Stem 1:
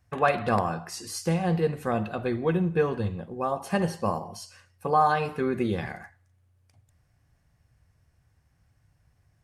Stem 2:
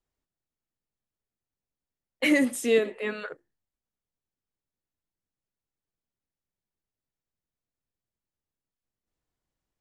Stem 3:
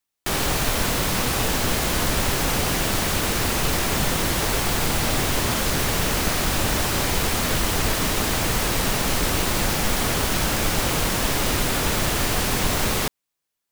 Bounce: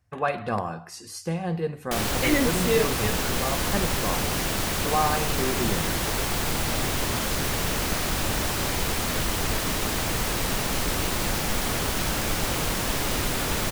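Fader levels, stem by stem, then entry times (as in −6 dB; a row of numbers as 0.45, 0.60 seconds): −3.0, −1.5, −4.0 decibels; 0.00, 0.00, 1.65 seconds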